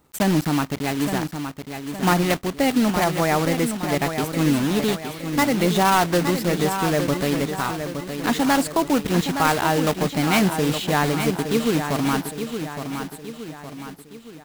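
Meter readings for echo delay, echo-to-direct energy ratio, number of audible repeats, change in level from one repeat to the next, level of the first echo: 0.866 s, -7.0 dB, 4, -6.5 dB, -8.0 dB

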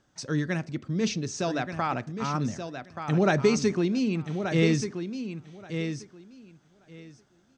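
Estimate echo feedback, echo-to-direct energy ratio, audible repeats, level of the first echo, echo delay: 16%, -8.0 dB, 2, -8.0 dB, 1.179 s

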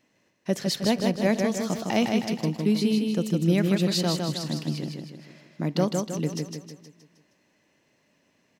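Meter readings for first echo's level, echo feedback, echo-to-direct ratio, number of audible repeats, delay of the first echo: -4.0 dB, 48%, -3.0 dB, 5, 0.157 s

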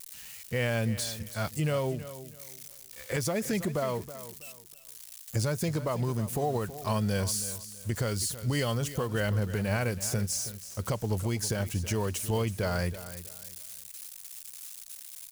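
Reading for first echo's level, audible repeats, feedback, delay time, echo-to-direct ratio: -14.0 dB, 2, 27%, 0.324 s, -13.5 dB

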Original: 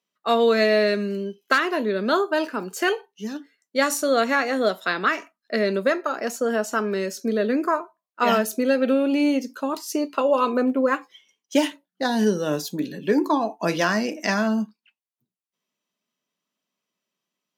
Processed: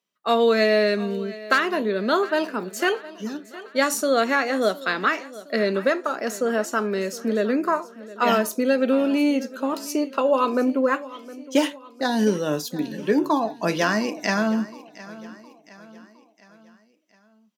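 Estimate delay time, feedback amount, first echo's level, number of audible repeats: 0.713 s, 49%, -18.0 dB, 3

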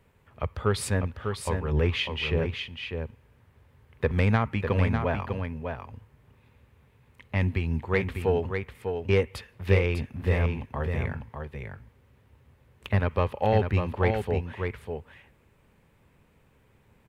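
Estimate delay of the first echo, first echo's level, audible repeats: 0.599 s, -6.0 dB, 1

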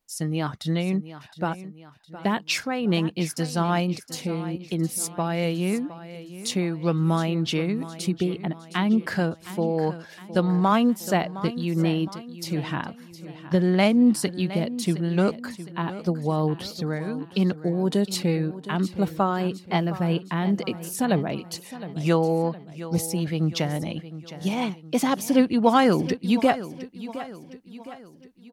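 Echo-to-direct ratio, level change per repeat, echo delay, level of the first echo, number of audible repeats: -13.5 dB, -6.5 dB, 0.713 s, -14.5 dB, 4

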